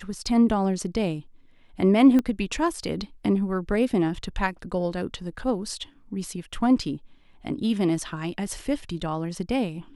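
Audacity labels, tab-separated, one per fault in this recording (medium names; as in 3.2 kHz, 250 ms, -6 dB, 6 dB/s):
2.190000	2.190000	pop -13 dBFS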